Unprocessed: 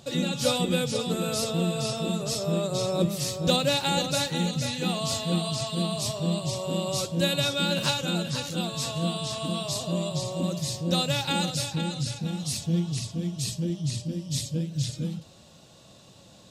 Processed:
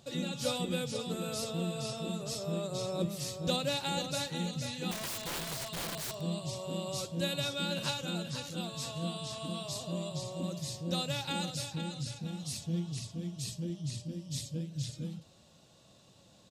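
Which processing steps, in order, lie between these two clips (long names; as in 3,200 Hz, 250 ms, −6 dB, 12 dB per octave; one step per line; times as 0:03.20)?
downsampling to 32,000 Hz
0:04.91–0:06.21: wrap-around overflow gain 24 dB
level −8.5 dB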